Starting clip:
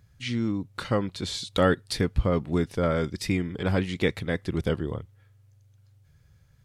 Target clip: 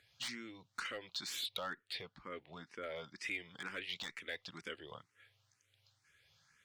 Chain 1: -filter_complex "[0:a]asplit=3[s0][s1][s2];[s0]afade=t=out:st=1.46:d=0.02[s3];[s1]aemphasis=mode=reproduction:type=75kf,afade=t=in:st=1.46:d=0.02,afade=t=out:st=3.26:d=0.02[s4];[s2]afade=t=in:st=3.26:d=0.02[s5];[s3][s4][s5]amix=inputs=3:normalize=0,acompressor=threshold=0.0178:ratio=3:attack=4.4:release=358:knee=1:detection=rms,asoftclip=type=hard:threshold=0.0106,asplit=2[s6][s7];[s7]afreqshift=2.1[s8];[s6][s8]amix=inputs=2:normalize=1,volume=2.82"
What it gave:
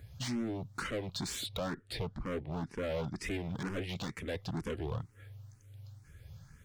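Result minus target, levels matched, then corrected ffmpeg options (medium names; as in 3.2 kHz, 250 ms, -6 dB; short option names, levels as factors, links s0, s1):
4 kHz band -5.5 dB
-filter_complex "[0:a]asplit=3[s0][s1][s2];[s0]afade=t=out:st=1.46:d=0.02[s3];[s1]aemphasis=mode=reproduction:type=75kf,afade=t=in:st=1.46:d=0.02,afade=t=out:st=3.26:d=0.02[s4];[s2]afade=t=in:st=3.26:d=0.02[s5];[s3][s4][s5]amix=inputs=3:normalize=0,acompressor=threshold=0.0178:ratio=3:attack=4.4:release=358:knee=1:detection=rms,bandpass=f=3100:t=q:w=0.88:csg=0,asoftclip=type=hard:threshold=0.0106,asplit=2[s6][s7];[s7]afreqshift=2.1[s8];[s6][s8]amix=inputs=2:normalize=1,volume=2.82"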